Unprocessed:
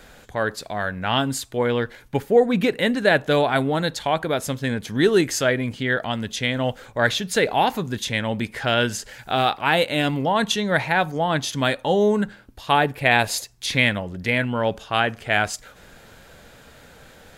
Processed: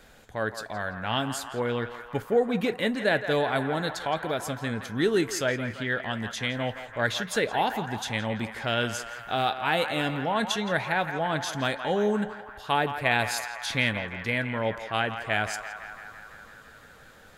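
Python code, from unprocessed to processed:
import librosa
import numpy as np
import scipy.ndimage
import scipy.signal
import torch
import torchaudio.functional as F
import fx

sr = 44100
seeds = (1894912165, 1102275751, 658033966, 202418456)

y = fx.comb_fb(x, sr, f0_hz=110.0, decay_s=0.15, harmonics='all', damping=0.0, mix_pct=40)
y = fx.echo_banded(y, sr, ms=168, feedback_pct=80, hz=1300.0, wet_db=-8)
y = F.gain(torch.from_numpy(y), -4.0).numpy()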